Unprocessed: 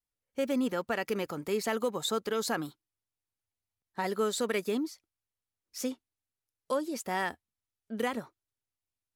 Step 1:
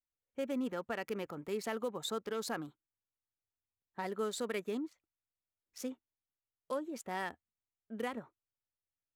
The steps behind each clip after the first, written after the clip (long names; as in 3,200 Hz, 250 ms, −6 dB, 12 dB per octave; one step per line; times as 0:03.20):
adaptive Wiener filter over 9 samples
level −6.5 dB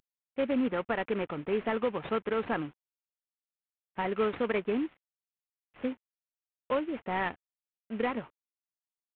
variable-slope delta modulation 16 kbit/s
level +8 dB